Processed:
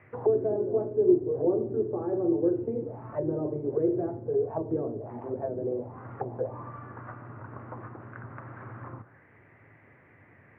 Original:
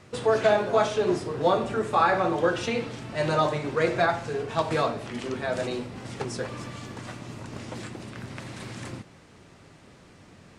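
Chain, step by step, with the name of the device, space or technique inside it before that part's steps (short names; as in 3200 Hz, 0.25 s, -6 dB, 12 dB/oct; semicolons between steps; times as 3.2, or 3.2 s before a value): envelope filter bass rig (envelope low-pass 370–2300 Hz down, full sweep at -24.5 dBFS; speaker cabinet 87–2100 Hz, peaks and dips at 110 Hz +8 dB, 190 Hz -8 dB, 1300 Hz -4 dB); gain -6 dB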